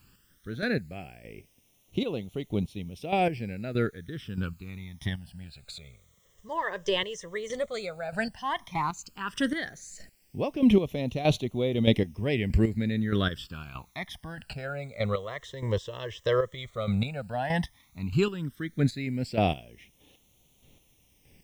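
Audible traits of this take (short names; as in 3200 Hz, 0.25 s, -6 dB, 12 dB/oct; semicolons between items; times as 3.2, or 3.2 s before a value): chopped level 1.6 Hz, depth 65%, duty 25%; a quantiser's noise floor 12-bit, dither triangular; phasing stages 12, 0.11 Hz, lowest notch 240–1600 Hz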